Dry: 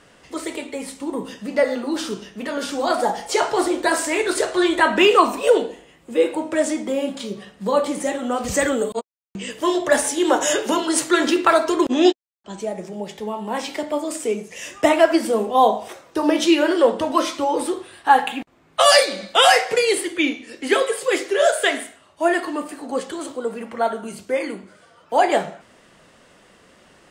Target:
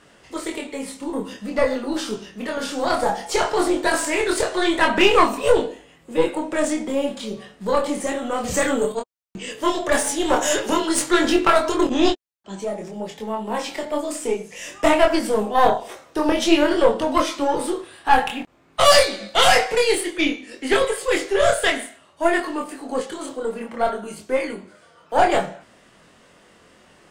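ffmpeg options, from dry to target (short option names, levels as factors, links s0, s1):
-af "aeval=exprs='(tanh(2.82*val(0)+0.6)-tanh(0.6))/2.82':c=same,flanger=delay=22.5:depth=4.2:speed=0.53,volume=1.88"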